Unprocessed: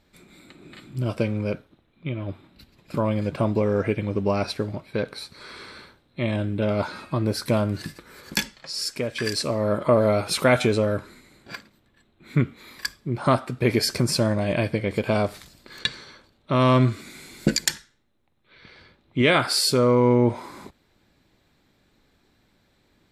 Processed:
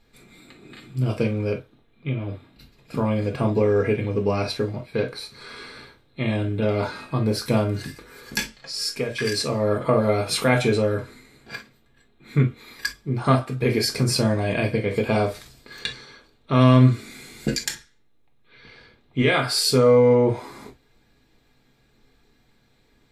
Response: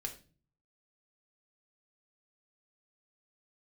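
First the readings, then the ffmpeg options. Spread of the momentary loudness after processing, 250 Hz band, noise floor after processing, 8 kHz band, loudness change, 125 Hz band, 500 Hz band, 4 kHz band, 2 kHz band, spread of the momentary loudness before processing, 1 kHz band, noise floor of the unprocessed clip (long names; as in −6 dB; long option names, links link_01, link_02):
19 LU, +1.0 dB, −61 dBFS, −0.5 dB, +1.5 dB, +3.0 dB, +1.5 dB, 0.0 dB, +0.5 dB, 18 LU, −0.5 dB, −65 dBFS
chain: -filter_complex "[0:a]alimiter=limit=-9.5dB:level=0:latency=1:release=467[link_01];[1:a]atrim=start_sample=2205,atrim=end_sample=3087[link_02];[link_01][link_02]afir=irnorm=-1:irlink=0,volume=2.5dB"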